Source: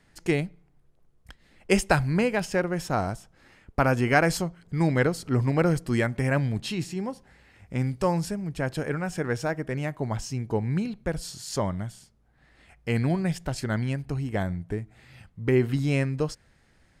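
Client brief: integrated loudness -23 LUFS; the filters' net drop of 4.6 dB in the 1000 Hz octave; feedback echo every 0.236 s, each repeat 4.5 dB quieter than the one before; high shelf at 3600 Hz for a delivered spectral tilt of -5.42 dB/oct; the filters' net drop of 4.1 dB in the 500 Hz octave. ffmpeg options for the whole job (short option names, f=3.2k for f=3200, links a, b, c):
-af "equalizer=f=500:t=o:g=-4,equalizer=f=1k:t=o:g=-5.5,highshelf=f=3.6k:g=5,aecho=1:1:236|472|708|944|1180|1416|1652|1888|2124:0.596|0.357|0.214|0.129|0.0772|0.0463|0.0278|0.0167|0.01,volume=4dB"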